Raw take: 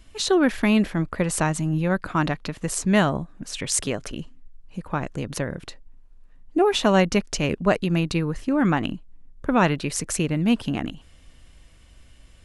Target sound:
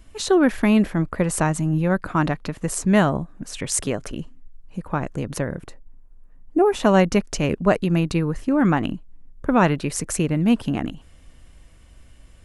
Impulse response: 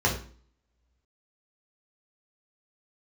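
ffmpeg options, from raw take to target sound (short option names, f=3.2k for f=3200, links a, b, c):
-af "asetnsamples=n=441:p=0,asendcmd='5.6 equalizer g -14;6.8 equalizer g -5.5',equalizer=f=3.8k:t=o:w=1.8:g=-6,volume=2.5dB"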